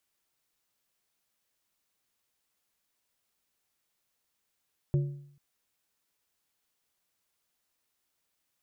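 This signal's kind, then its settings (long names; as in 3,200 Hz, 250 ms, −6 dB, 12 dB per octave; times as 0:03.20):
struck metal plate, length 0.44 s, lowest mode 142 Hz, modes 3, decay 0.65 s, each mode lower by 10.5 dB, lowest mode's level −20.5 dB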